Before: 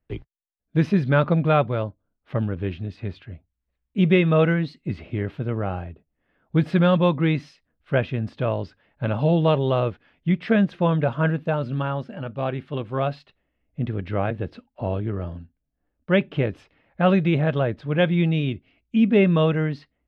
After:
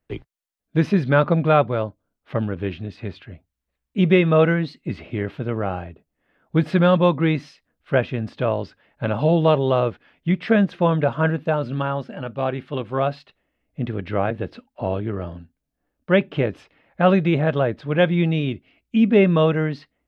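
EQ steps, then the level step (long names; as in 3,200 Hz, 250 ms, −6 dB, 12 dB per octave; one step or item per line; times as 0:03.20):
low-shelf EQ 150 Hz −8 dB
dynamic equaliser 3,000 Hz, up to −3 dB, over −36 dBFS, Q 0.84
+4.0 dB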